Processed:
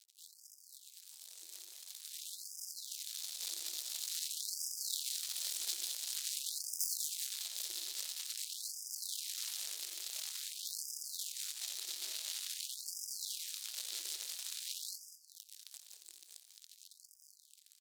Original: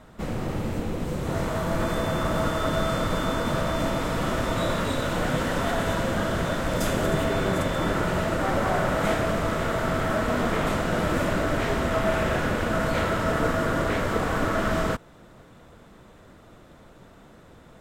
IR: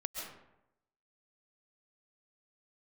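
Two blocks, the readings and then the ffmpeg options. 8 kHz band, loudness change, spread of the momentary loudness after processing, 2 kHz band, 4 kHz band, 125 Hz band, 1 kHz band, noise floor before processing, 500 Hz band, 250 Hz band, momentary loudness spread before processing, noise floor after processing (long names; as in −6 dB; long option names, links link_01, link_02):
+2.0 dB, −14.0 dB, 17 LU, −27.5 dB, −5.0 dB, below −40 dB, below −40 dB, −51 dBFS, below −40 dB, below −40 dB, 3 LU, −64 dBFS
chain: -filter_complex "[0:a]acompressor=threshold=-46dB:ratio=2.5,alimiter=level_in=16dB:limit=-24dB:level=0:latency=1:release=69,volume=-16dB,highshelf=frequency=4100:gain=10,flanger=delay=19:depth=3.2:speed=0.51,acrusher=bits=6:mix=0:aa=0.5,asplit=2[link_01][link_02];[link_02]adelay=198.3,volume=-7dB,highshelf=frequency=4000:gain=-4.46[link_03];[link_01][link_03]amix=inputs=2:normalize=0,asplit=2[link_04][link_05];[1:a]atrim=start_sample=2205,asetrate=57330,aresample=44100,adelay=88[link_06];[link_05][link_06]afir=irnorm=-1:irlink=0,volume=-6.5dB[link_07];[link_04][link_07]amix=inputs=2:normalize=0,dynaudnorm=framelen=470:gausssize=11:maxgain=13dB,firequalizer=gain_entry='entry(230,0);entry(420,-26);entry(1100,-28);entry(4000,3)':delay=0.05:min_phase=1,afftfilt=real='re*gte(b*sr/1024,310*pow(4900/310,0.5+0.5*sin(2*PI*0.48*pts/sr)))':imag='im*gte(b*sr/1024,310*pow(4900/310,0.5+0.5*sin(2*PI*0.48*pts/sr)))':win_size=1024:overlap=0.75,volume=7dB"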